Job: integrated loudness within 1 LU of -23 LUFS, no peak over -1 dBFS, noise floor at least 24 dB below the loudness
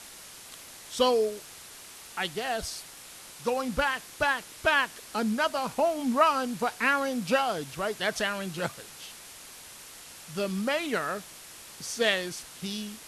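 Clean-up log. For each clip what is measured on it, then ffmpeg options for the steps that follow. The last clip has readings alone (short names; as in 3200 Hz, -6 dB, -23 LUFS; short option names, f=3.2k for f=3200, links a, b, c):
noise floor -47 dBFS; noise floor target -53 dBFS; loudness -28.5 LUFS; peak -9.5 dBFS; loudness target -23.0 LUFS
-> -af "afftdn=nr=6:nf=-47"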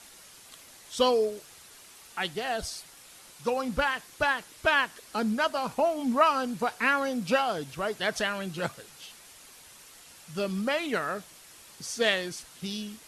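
noise floor -52 dBFS; noise floor target -53 dBFS
-> -af "afftdn=nr=6:nf=-52"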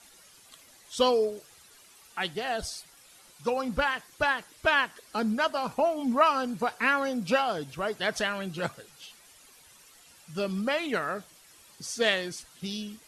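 noise floor -56 dBFS; loudness -28.5 LUFS; peak -9.5 dBFS; loudness target -23.0 LUFS
-> -af "volume=5.5dB"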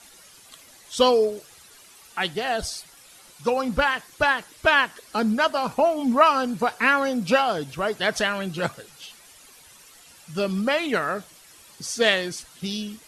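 loudness -23.0 LUFS; peak -4.0 dBFS; noise floor -51 dBFS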